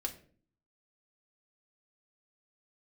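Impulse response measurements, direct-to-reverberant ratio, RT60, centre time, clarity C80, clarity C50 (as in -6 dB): 1.0 dB, 0.45 s, 9 ms, 16.5 dB, 13.0 dB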